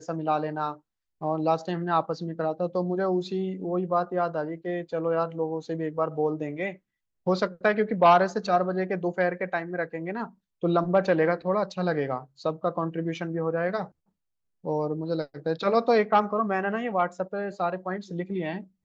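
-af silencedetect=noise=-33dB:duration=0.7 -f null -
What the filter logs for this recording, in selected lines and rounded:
silence_start: 13.85
silence_end: 14.65 | silence_duration: 0.81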